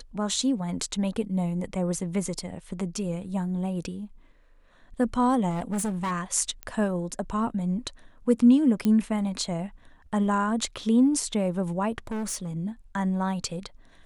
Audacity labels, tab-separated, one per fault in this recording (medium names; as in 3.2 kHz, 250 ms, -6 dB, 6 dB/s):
5.490000	6.120000	clipped -25 dBFS
6.630000	6.630000	pop -20 dBFS
8.850000	8.850000	pop -13 dBFS
12.070000	12.500000	clipped -28 dBFS